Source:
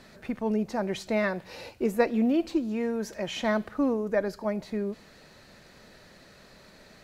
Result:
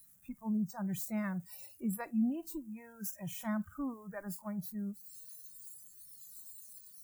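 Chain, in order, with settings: zero-crossing glitches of -28 dBFS; FFT filter 170 Hz 0 dB, 450 Hz -29 dB, 810 Hz -15 dB, 1.2 kHz -13 dB, 4.3 kHz -27 dB, 7.5 kHz -13 dB; spectral noise reduction 22 dB; treble shelf 8.4 kHz +10.5 dB; trim +3 dB

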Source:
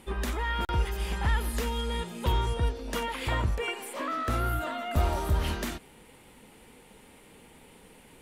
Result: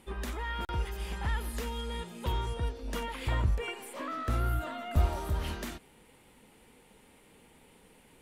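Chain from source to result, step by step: 2.83–5.06 s: bass shelf 160 Hz +7.5 dB; trim -5.5 dB

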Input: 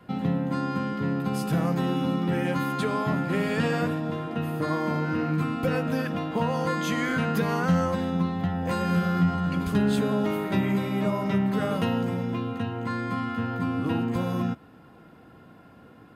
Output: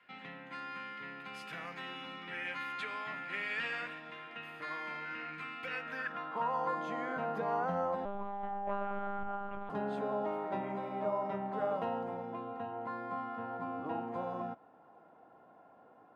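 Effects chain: band-pass sweep 2.2 kHz -> 750 Hz, 5.74–6.84 s; 8.05–9.70 s: monotone LPC vocoder at 8 kHz 200 Hz

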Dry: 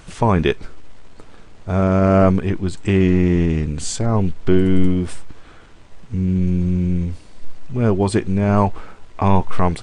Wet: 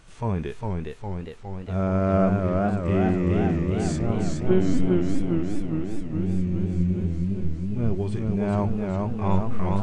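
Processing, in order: 4.15–4.79 s: LPC vocoder at 8 kHz pitch kept; harmonic-percussive split percussive -15 dB; modulated delay 410 ms, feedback 70%, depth 129 cents, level -3 dB; trim -7 dB

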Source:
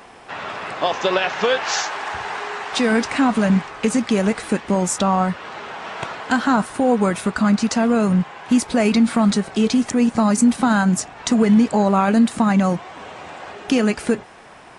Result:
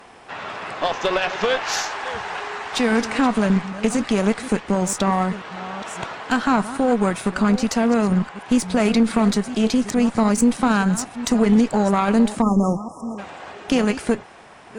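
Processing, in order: chunks repeated in reverse 602 ms, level -13.5 dB; Chebyshev shaper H 4 -18 dB, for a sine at -4.5 dBFS; spectral selection erased 12.42–13.18 s, 1.3–5 kHz; trim -2 dB

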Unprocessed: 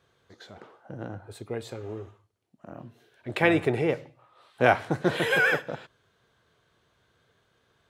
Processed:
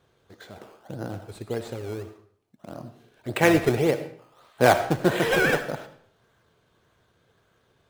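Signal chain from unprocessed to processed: in parallel at -3 dB: decimation with a swept rate 16×, swing 100% 1.7 Hz; on the sum: reverberation RT60 0.55 s, pre-delay 35 ms, DRR 11 dB; trim -1 dB

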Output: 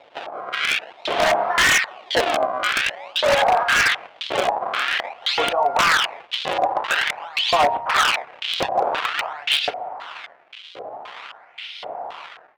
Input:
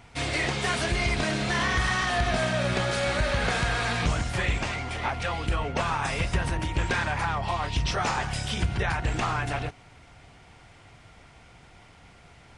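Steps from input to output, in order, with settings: bass shelf 200 Hz +5.5 dB; feedback comb 56 Hz, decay 0.38 s, harmonics all, mix 30%; compression 5:1, threshold -32 dBFS, peak gain reduction 13.5 dB; decimation with a swept rate 28×, swing 160% 0.49 Hz; LFO high-pass saw up 0.93 Hz 510–4000 Hz; level rider gain up to 16.5 dB; LFO low-pass square 1.9 Hz 710–3200 Hz; wavefolder -12.5 dBFS; trim +2.5 dB

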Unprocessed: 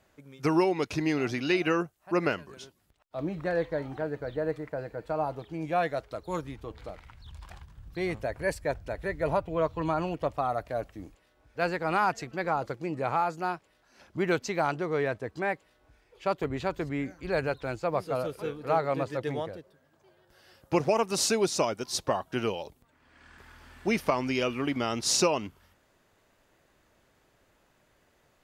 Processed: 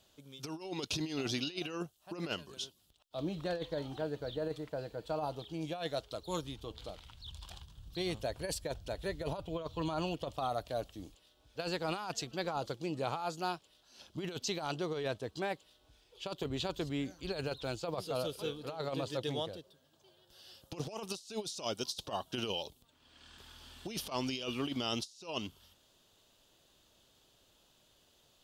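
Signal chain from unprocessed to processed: resonant high shelf 2.6 kHz +7.5 dB, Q 3; compressor with a negative ratio -29 dBFS, ratio -0.5; trim -7 dB

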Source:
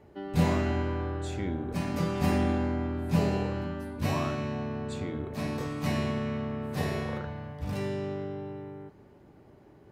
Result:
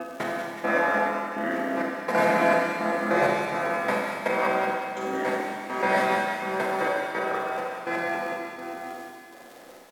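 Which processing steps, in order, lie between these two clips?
time reversed locally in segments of 194 ms; Chebyshev high-pass 270 Hz, order 3; high-order bell 1.2 kHz +12 dB 2.6 oct; crackle 300 per s -40 dBFS; trance gate "xxxx...x" 166 bpm -24 dB; pitch shift -2.5 st; on a send: feedback echo behind a high-pass 187 ms, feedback 69%, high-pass 1.9 kHz, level -6.5 dB; on the sum: Schroeder reverb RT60 1.8 s, combs from 30 ms, DRR -2.5 dB

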